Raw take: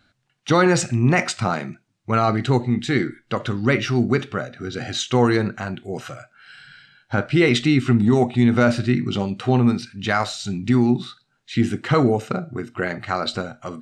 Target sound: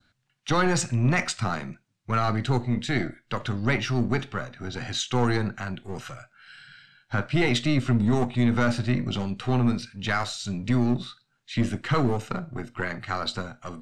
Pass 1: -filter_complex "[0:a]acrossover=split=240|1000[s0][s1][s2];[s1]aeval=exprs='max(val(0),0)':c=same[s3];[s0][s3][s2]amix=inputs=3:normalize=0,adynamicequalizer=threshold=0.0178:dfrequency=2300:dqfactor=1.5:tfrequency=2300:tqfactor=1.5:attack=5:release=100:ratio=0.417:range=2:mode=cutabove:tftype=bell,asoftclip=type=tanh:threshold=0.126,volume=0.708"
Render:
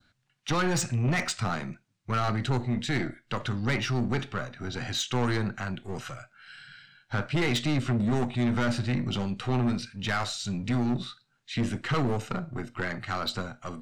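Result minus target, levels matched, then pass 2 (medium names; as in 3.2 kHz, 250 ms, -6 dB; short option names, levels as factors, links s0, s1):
saturation: distortion +14 dB
-filter_complex "[0:a]acrossover=split=240|1000[s0][s1][s2];[s1]aeval=exprs='max(val(0),0)':c=same[s3];[s0][s3][s2]amix=inputs=3:normalize=0,adynamicequalizer=threshold=0.0178:dfrequency=2300:dqfactor=1.5:tfrequency=2300:tqfactor=1.5:attack=5:release=100:ratio=0.417:range=2:mode=cutabove:tftype=bell,asoftclip=type=tanh:threshold=0.447,volume=0.708"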